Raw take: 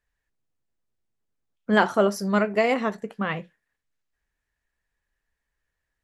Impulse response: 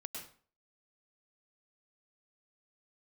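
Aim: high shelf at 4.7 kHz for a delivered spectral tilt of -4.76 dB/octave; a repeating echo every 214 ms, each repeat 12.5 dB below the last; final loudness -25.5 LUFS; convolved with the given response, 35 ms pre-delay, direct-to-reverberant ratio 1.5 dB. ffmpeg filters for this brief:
-filter_complex "[0:a]highshelf=f=4700:g=-9,aecho=1:1:214|428|642:0.237|0.0569|0.0137,asplit=2[s0][s1];[1:a]atrim=start_sample=2205,adelay=35[s2];[s1][s2]afir=irnorm=-1:irlink=0,volume=1.06[s3];[s0][s3]amix=inputs=2:normalize=0,volume=0.631"

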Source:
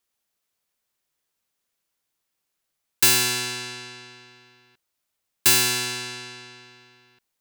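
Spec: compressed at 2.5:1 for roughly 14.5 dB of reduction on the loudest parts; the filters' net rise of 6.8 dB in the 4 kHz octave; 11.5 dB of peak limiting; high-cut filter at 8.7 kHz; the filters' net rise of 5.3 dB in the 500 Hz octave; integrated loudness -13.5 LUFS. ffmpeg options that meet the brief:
-af "lowpass=8700,equalizer=f=500:t=o:g=8.5,equalizer=f=4000:t=o:g=8,acompressor=threshold=0.02:ratio=2.5,volume=10.6,alimiter=limit=0.668:level=0:latency=1"

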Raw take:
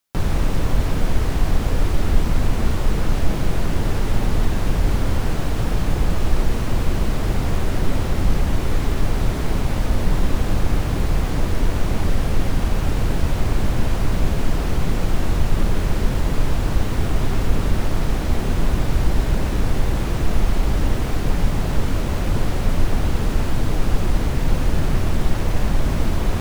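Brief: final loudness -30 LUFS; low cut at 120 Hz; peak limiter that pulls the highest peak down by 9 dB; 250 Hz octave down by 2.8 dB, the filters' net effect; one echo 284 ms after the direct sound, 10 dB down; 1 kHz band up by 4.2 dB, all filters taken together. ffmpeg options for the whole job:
-af "highpass=120,equalizer=f=250:t=o:g=-3.5,equalizer=f=1000:t=o:g=5.5,alimiter=limit=0.0841:level=0:latency=1,aecho=1:1:284:0.316"

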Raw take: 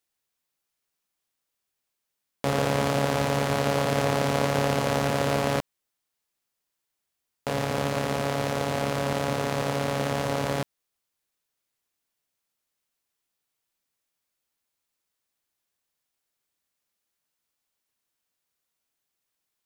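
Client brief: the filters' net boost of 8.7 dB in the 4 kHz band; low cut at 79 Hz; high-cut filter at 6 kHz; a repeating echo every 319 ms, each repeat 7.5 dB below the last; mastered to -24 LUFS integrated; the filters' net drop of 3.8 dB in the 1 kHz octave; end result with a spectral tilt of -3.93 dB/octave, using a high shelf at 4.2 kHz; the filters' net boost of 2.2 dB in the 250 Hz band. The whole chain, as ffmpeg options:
-af "highpass=79,lowpass=6000,equalizer=f=250:t=o:g=3,equalizer=f=1000:t=o:g=-6.5,equalizer=f=4000:t=o:g=8,highshelf=f=4200:g=7.5,aecho=1:1:319|638|957|1276|1595:0.422|0.177|0.0744|0.0312|0.0131,volume=1.12"

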